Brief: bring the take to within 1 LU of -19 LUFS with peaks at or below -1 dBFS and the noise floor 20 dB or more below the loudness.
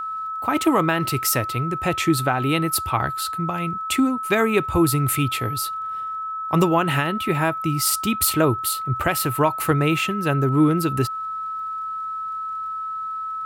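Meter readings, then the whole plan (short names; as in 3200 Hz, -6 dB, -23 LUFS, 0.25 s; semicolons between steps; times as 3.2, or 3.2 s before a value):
ticks 23/s; steady tone 1300 Hz; tone level -26 dBFS; loudness -22.0 LUFS; peak -6.5 dBFS; loudness target -19.0 LUFS
-> de-click; notch 1300 Hz, Q 30; gain +3 dB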